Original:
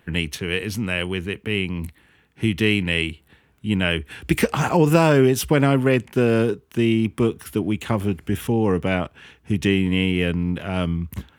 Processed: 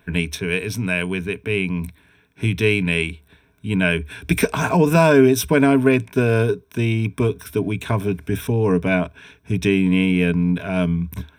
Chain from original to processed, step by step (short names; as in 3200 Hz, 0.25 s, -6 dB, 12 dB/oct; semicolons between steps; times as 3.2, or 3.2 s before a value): ripple EQ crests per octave 1.6, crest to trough 11 dB